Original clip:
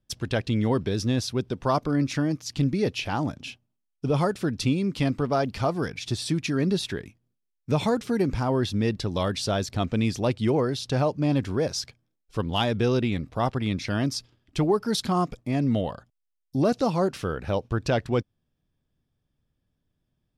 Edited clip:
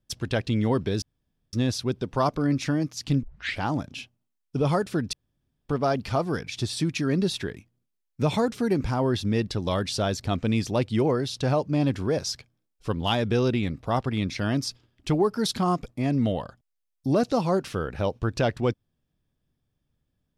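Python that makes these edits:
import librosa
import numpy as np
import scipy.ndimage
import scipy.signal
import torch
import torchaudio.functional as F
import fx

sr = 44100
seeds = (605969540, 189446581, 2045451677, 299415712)

y = fx.edit(x, sr, fx.insert_room_tone(at_s=1.02, length_s=0.51),
    fx.tape_start(start_s=2.72, length_s=0.36),
    fx.room_tone_fill(start_s=4.62, length_s=0.56), tone=tone)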